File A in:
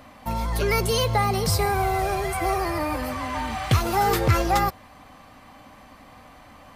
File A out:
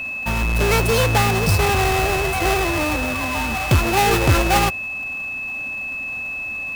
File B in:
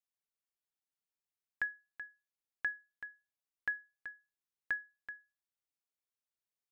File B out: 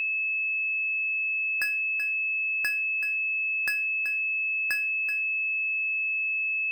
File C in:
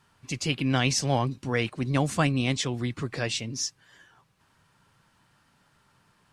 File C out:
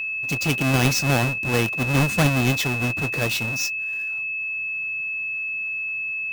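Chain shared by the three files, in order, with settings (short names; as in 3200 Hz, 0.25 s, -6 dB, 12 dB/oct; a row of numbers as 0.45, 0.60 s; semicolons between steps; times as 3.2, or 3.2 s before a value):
half-waves squared off; whine 2600 Hz -25 dBFS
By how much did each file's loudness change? +4.5, +17.0, +5.5 LU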